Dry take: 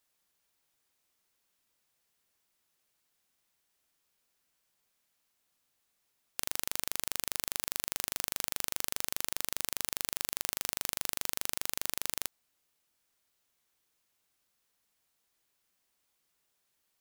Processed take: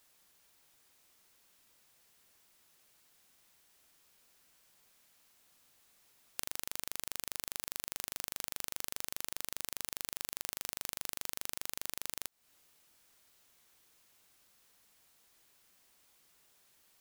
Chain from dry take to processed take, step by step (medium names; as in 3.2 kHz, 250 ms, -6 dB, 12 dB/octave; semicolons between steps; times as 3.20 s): compression 20:1, threshold -41 dBFS, peak gain reduction 16 dB; trim +10 dB